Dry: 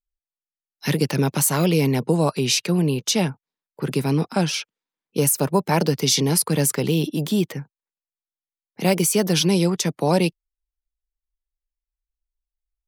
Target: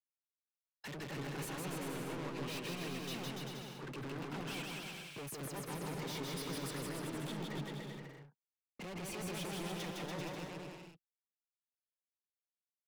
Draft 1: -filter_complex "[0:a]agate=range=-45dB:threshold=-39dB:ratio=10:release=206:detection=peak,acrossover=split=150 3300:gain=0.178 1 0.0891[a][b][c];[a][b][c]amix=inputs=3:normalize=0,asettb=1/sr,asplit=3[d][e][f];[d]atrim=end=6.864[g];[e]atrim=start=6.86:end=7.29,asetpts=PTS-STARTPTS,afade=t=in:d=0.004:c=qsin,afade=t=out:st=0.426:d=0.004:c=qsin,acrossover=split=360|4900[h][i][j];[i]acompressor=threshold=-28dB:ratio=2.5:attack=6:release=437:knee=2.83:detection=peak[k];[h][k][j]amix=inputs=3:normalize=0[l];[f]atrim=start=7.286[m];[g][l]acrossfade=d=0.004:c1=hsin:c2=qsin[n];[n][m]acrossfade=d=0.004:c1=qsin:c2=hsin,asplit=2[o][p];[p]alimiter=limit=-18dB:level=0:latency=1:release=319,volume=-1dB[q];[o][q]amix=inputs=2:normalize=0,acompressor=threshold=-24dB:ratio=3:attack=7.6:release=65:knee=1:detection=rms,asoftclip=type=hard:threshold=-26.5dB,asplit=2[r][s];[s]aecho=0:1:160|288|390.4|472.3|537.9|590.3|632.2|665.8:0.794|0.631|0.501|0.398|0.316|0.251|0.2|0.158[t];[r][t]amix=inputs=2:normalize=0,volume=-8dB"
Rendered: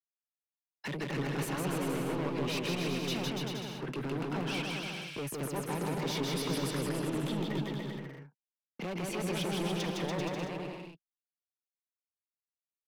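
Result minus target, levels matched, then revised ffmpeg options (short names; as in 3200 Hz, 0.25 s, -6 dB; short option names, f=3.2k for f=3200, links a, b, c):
hard clip: distortion -5 dB
-filter_complex "[0:a]agate=range=-45dB:threshold=-39dB:ratio=10:release=206:detection=peak,acrossover=split=150 3300:gain=0.178 1 0.0891[a][b][c];[a][b][c]amix=inputs=3:normalize=0,asettb=1/sr,asplit=3[d][e][f];[d]atrim=end=6.864[g];[e]atrim=start=6.86:end=7.29,asetpts=PTS-STARTPTS,afade=t=in:d=0.004:c=qsin,afade=t=out:st=0.426:d=0.004:c=qsin,acrossover=split=360|4900[h][i][j];[i]acompressor=threshold=-28dB:ratio=2.5:attack=6:release=437:knee=2.83:detection=peak[k];[h][k][j]amix=inputs=3:normalize=0[l];[f]atrim=start=7.286[m];[g][l]acrossfade=d=0.004:c1=hsin:c2=qsin[n];[n][m]acrossfade=d=0.004:c1=qsin:c2=hsin,asplit=2[o][p];[p]alimiter=limit=-18dB:level=0:latency=1:release=319,volume=-1dB[q];[o][q]amix=inputs=2:normalize=0,acompressor=threshold=-24dB:ratio=3:attack=7.6:release=65:knee=1:detection=rms,asoftclip=type=hard:threshold=-36.5dB,asplit=2[r][s];[s]aecho=0:1:160|288|390.4|472.3|537.9|590.3|632.2|665.8:0.794|0.631|0.501|0.398|0.316|0.251|0.2|0.158[t];[r][t]amix=inputs=2:normalize=0,volume=-8dB"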